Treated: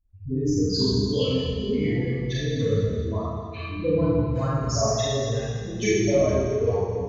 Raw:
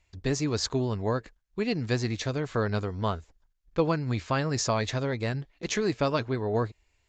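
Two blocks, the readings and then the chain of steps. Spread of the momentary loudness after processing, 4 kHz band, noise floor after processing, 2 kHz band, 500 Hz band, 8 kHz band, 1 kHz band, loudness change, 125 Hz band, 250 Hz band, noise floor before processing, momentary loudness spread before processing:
7 LU, +5.0 dB, -36 dBFS, -0.5 dB, +6.0 dB, +3.5 dB, -1.0 dB, +5.0 dB, +5.0 dB, +5.5 dB, -72 dBFS, 6 LU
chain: spectral contrast raised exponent 2.9; reverb removal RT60 1.6 s; dispersion highs, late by 0.112 s, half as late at 450 Hz; echoes that change speed 88 ms, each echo -7 st, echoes 2, each echo -6 dB; on a send: split-band echo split 360 Hz, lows 0.113 s, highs 0.214 s, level -10.5 dB; on the sum: Schroeder reverb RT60 1.5 s, combs from 27 ms, DRR -9 dB; gain -3.5 dB

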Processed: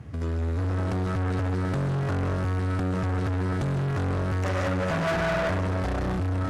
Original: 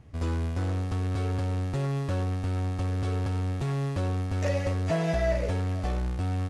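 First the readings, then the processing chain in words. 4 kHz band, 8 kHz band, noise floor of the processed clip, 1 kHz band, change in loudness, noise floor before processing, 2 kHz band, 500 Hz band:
+2.5 dB, n/a, -27 dBFS, +5.0 dB, +2.0 dB, -32 dBFS, +7.0 dB, +2.0 dB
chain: HPF 74 Hz 24 dB/oct; AGC gain up to 6.5 dB; low shelf 380 Hz +6.5 dB; digital reverb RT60 0.87 s, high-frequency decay 0.6×, pre-delay 0.1 s, DRR 1 dB; tube stage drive 24 dB, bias 0.4; limiter -31 dBFS, peak gain reduction 9 dB; bell 1500 Hz +6 dB 0.84 oct; gain +7 dB

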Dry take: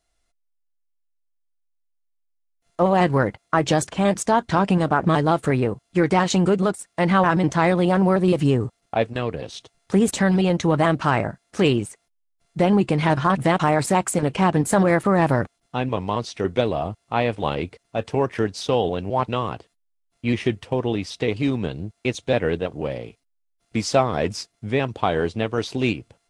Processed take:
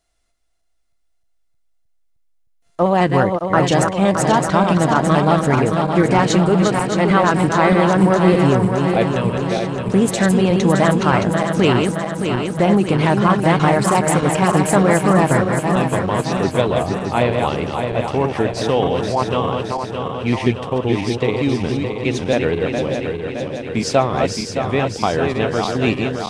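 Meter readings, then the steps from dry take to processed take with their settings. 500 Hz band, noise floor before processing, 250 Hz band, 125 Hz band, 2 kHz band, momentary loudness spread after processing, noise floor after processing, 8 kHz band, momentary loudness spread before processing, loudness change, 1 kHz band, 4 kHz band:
+5.0 dB, -72 dBFS, +5.0 dB, +5.0 dB, +5.0 dB, 7 LU, -61 dBFS, +5.0 dB, 10 LU, +4.5 dB, +5.0 dB, +5.0 dB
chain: regenerating reverse delay 0.309 s, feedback 77%, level -5 dB; gain +2.5 dB

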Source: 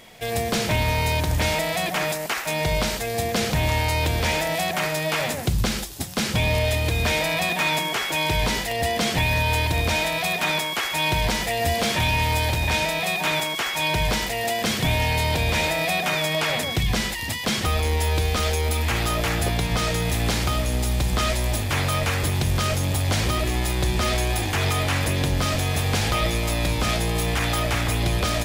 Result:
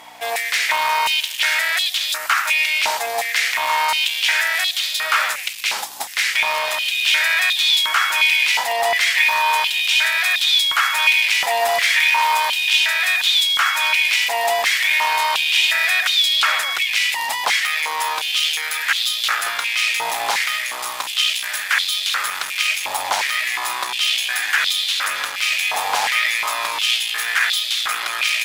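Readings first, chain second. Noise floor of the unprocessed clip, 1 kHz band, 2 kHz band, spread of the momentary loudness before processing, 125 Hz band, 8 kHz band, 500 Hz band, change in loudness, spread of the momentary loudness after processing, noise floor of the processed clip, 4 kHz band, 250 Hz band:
-29 dBFS, +5.0 dB, +9.0 dB, 3 LU, under -35 dB, +4.0 dB, -4.5 dB, +5.5 dB, 6 LU, -28 dBFS, +9.0 dB, under -20 dB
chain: hum 60 Hz, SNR 10 dB; one-sided clip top -20.5 dBFS; stepped high-pass 2.8 Hz 880–3600 Hz; gain +4 dB

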